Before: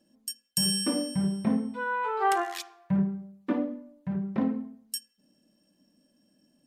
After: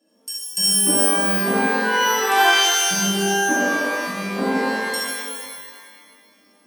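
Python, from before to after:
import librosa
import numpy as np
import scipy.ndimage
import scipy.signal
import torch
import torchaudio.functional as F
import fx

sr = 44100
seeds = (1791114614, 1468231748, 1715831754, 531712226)

y = scipy.signal.sosfilt(scipy.signal.butter(4, 240.0, 'highpass', fs=sr, output='sos'), x)
y = fx.rev_shimmer(y, sr, seeds[0], rt60_s=1.8, semitones=12, shimmer_db=-2, drr_db=-8.0)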